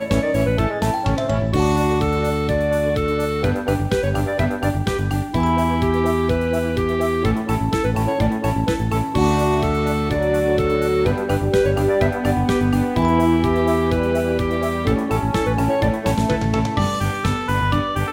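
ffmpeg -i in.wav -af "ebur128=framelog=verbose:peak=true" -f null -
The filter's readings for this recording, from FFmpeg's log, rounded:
Integrated loudness:
  I:         -19.6 LUFS
  Threshold: -29.6 LUFS
Loudness range:
  LRA:         2.0 LU
  Threshold: -39.5 LUFS
  LRA low:   -20.3 LUFS
  LRA high:  -18.3 LUFS
True peak:
  Peak:       -4.5 dBFS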